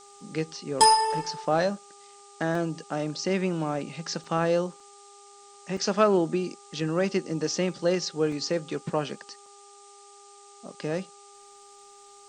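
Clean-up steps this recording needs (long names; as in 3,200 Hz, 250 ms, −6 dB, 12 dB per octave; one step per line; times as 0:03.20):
clipped peaks rebuilt −9 dBFS
hum removal 403.3 Hz, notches 3
repair the gap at 0:02.55/0:04.24/0:04.80/0:05.77/0:08.32/0:09.46, 3 ms
broadband denoise 21 dB, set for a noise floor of −51 dBFS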